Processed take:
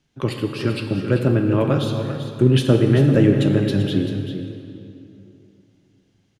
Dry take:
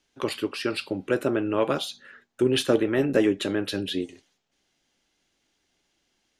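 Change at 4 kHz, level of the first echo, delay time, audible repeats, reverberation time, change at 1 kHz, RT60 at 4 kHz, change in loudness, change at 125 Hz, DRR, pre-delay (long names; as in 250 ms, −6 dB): +0.5 dB, −10.0 dB, 389 ms, 1, 2.9 s, +2.0 dB, 2.0 s, +6.5 dB, +19.0 dB, 4.0 dB, 38 ms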